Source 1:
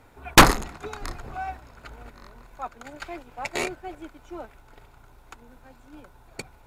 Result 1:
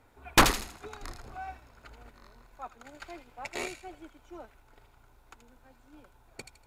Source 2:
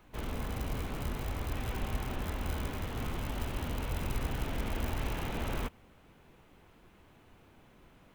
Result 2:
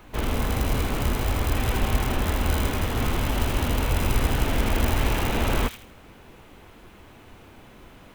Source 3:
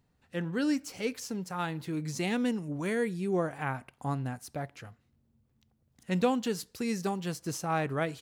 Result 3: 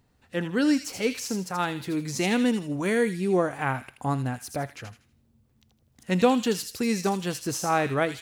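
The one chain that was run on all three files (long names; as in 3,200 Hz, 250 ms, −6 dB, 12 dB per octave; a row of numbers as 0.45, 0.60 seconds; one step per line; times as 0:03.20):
parametric band 160 Hz −7 dB 0.23 octaves
on a send: delay with a high-pass on its return 80 ms, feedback 33%, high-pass 2,700 Hz, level −4.5 dB
on the sum: normalise the peak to −9 dBFS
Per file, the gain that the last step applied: −8.0, +12.0, +6.5 decibels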